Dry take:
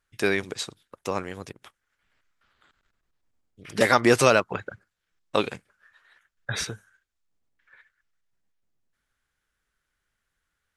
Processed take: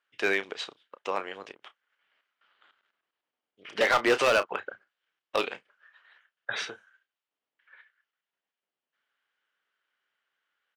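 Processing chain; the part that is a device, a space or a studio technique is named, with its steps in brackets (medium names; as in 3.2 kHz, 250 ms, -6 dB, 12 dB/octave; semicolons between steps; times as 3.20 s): megaphone (band-pass 470–3400 Hz; peaking EQ 3 kHz +7 dB 0.28 oct; hard clipper -17 dBFS, distortion -9 dB; doubling 31 ms -12 dB)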